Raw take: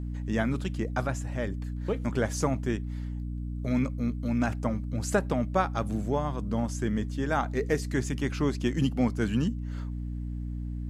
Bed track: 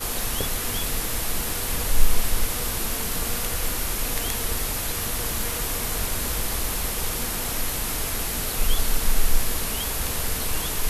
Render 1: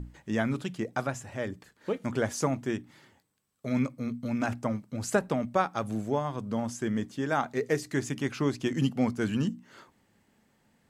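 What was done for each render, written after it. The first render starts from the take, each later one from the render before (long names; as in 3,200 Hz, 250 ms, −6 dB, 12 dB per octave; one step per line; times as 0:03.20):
mains-hum notches 60/120/180/240/300 Hz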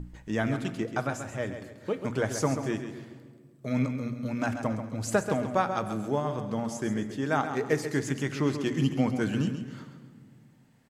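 on a send: repeating echo 135 ms, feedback 35%, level −9 dB
on the sum: rectangular room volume 2,700 cubic metres, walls mixed, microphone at 0.52 metres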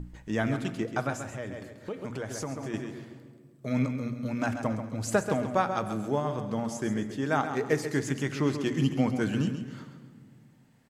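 0:01.24–0:02.74: downward compressor 3 to 1, threshold −33 dBFS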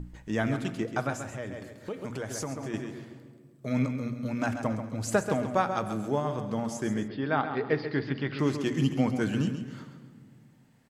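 0:01.67–0:02.54: high-shelf EQ 5,800 Hz +4.5 dB
0:07.08–0:08.39: Chebyshev low-pass filter 4,800 Hz, order 6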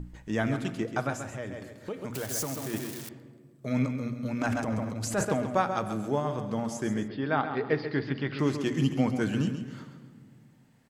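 0:02.14–0:03.09: spike at every zero crossing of −27.5 dBFS
0:04.41–0:05.25: transient designer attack −9 dB, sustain +9 dB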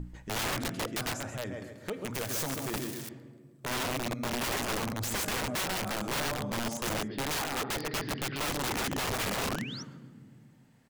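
wrap-around overflow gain 27 dB
0:09.48–0:09.83: sound drawn into the spectrogram rise 960–6,200 Hz −43 dBFS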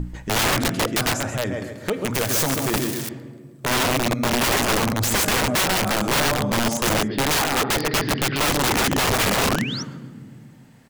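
level +12 dB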